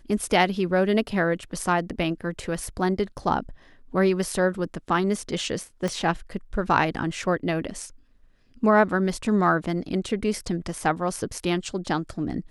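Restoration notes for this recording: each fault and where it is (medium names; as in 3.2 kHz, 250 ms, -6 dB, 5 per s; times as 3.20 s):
5.88 s: pop -15 dBFS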